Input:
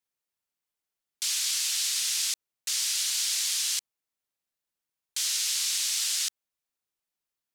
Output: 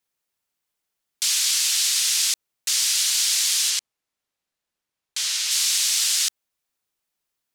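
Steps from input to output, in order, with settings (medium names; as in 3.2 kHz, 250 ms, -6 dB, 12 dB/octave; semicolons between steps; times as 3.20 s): 3.69–5.50 s: treble shelf 11 kHz -> 7.2 kHz -10 dB; trim +7 dB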